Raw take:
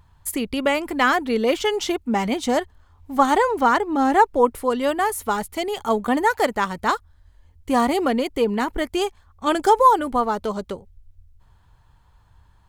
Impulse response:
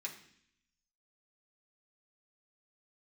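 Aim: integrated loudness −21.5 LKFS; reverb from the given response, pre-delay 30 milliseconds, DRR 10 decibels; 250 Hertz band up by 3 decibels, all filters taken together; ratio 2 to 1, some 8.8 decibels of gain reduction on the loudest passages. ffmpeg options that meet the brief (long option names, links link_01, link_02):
-filter_complex "[0:a]equalizer=frequency=250:width_type=o:gain=3.5,acompressor=threshold=-26dB:ratio=2,asplit=2[link_01][link_02];[1:a]atrim=start_sample=2205,adelay=30[link_03];[link_02][link_03]afir=irnorm=-1:irlink=0,volume=-9dB[link_04];[link_01][link_04]amix=inputs=2:normalize=0,volume=4.5dB"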